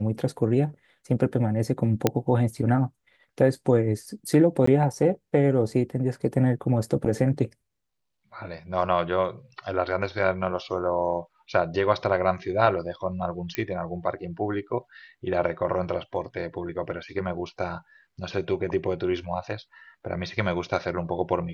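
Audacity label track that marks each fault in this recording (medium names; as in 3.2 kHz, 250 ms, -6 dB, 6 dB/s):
2.070000	2.070000	pop -5 dBFS
4.660000	4.670000	dropout 14 ms
13.550000	13.550000	pop -12 dBFS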